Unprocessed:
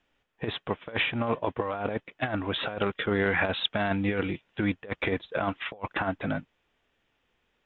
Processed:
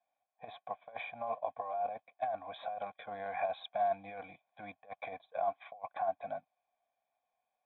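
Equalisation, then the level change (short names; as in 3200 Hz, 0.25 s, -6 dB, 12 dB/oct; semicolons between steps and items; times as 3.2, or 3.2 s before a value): vowel filter a; fixed phaser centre 1900 Hz, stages 8; notch 2700 Hz, Q 5.8; +3.5 dB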